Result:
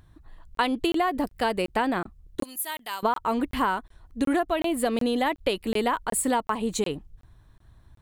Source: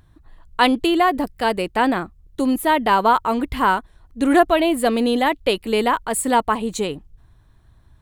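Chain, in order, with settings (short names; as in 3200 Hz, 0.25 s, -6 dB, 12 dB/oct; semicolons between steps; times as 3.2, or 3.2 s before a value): 2.43–3.03 pre-emphasis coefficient 0.97; compressor 10:1, threshold -19 dBFS, peak gain reduction 11 dB; crackling interface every 0.37 s, samples 1024, zero, from 0.55; gain -1.5 dB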